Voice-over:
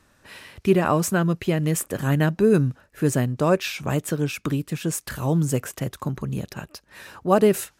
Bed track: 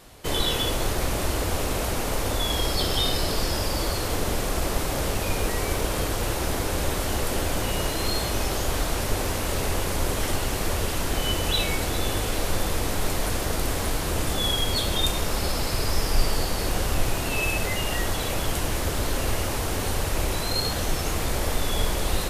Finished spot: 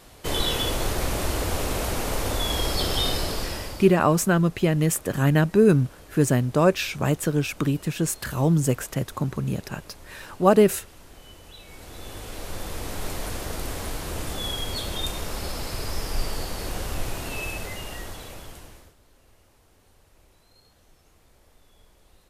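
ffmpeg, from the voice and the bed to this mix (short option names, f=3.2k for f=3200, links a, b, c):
-filter_complex "[0:a]adelay=3150,volume=1dB[a];[1:a]volume=16dB,afade=t=out:st=3.1:d=0.85:silence=0.0841395,afade=t=in:st=11.63:d=1.44:silence=0.149624,afade=t=out:st=17.27:d=1.68:silence=0.0421697[b];[a][b]amix=inputs=2:normalize=0"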